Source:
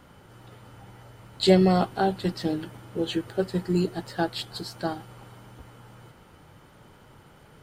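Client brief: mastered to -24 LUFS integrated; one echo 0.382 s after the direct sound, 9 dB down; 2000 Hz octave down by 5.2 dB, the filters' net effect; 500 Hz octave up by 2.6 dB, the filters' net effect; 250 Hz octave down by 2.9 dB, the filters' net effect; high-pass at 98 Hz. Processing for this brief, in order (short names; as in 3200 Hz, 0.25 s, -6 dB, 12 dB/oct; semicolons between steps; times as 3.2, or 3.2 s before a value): HPF 98 Hz; bell 250 Hz -8.5 dB; bell 500 Hz +7.5 dB; bell 2000 Hz -8 dB; echo 0.382 s -9 dB; gain +1.5 dB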